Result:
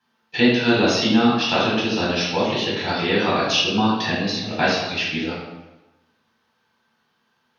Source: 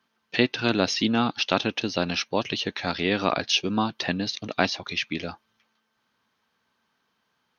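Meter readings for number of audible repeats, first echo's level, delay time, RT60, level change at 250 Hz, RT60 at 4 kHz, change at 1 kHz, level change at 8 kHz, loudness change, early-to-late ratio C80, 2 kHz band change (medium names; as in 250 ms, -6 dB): no echo, no echo, no echo, 1.0 s, +6.5 dB, 0.80 s, +5.5 dB, no reading, +5.5 dB, 3.5 dB, +5.5 dB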